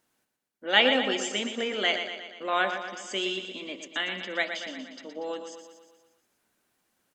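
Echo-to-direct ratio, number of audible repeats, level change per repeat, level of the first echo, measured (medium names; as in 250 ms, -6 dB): -6.5 dB, 6, -5.0 dB, -8.0 dB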